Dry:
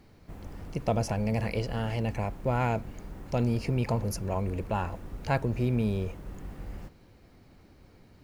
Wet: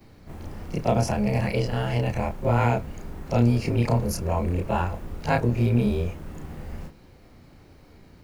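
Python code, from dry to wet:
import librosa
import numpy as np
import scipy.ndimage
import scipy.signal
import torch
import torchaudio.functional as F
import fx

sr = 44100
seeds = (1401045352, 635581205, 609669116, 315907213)

y = fx.frame_reverse(x, sr, frame_ms=67.0)
y = y * librosa.db_to_amplitude(8.5)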